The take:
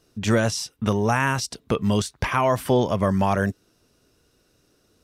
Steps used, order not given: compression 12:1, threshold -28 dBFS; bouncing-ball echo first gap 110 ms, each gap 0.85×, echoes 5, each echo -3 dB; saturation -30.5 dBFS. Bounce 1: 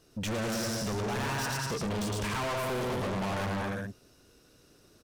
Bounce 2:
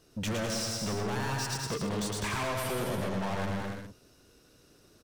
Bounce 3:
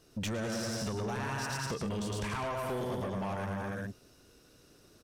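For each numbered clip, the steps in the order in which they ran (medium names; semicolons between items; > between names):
bouncing-ball echo > saturation > compression; saturation > bouncing-ball echo > compression; bouncing-ball echo > compression > saturation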